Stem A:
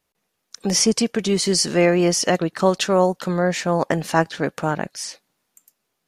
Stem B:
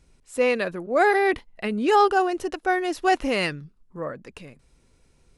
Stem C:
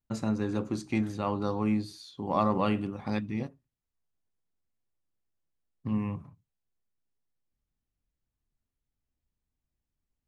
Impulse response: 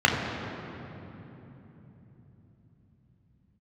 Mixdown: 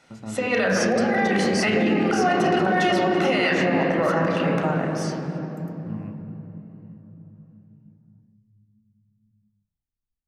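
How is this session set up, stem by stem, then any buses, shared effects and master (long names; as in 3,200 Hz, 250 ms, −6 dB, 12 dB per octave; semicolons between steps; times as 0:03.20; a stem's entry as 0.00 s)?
−8.0 dB, 0.00 s, send −12 dB, downward compressor, threshold −18 dBFS, peak gain reduction 7.5 dB
+1.0 dB, 0.00 s, send −9.5 dB, meter weighting curve A; compressor whose output falls as the input rises −27 dBFS, ratio −0.5
−6.0 dB, 0.00 s, send −23.5 dB, low-shelf EQ 71 Hz +11.5 dB; expander for the loud parts 1.5 to 1, over −35 dBFS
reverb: on, RT60 3.5 s, pre-delay 4 ms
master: brickwall limiter −12 dBFS, peak gain reduction 9 dB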